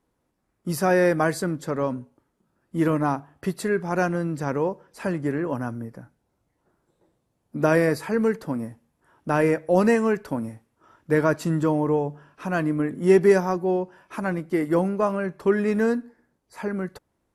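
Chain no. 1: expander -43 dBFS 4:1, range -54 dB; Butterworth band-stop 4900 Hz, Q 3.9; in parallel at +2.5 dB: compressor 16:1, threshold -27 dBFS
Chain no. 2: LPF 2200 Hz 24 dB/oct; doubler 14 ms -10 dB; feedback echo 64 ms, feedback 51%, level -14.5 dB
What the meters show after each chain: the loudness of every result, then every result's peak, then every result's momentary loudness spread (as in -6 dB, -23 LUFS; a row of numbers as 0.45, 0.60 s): -21.0, -24.0 LUFS; -4.0, -6.5 dBFS; 11, 14 LU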